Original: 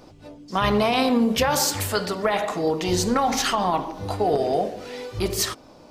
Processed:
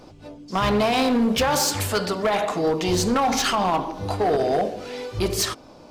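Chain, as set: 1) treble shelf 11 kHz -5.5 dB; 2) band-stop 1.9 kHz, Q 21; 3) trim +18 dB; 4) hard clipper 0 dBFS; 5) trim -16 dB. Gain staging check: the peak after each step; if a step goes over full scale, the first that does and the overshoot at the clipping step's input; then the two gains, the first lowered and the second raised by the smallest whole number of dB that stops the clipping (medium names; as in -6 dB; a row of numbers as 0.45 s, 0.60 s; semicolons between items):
-9.0 dBFS, -9.0 dBFS, +9.0 dBFS, 0.0 dBFS, -16.0 dBFS; step 3, 9.0 dB; step 3 +9 dB, step 5 -7 dB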